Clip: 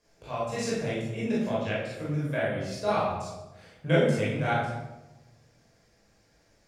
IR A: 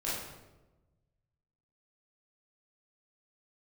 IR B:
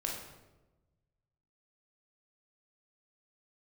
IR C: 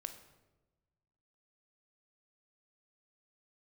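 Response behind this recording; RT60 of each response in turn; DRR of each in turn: A; 1.1, 1.1, 1.1 s; -9.0, -1.5, 8.0 dB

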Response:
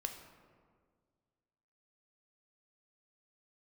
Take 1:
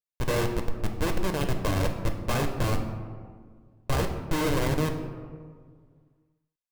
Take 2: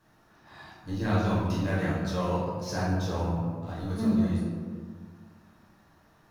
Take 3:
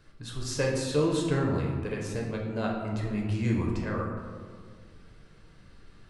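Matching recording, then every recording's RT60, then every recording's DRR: 1; 1.8, 1.8, 1.8 s; 4.5, -8.0, -1.5 dB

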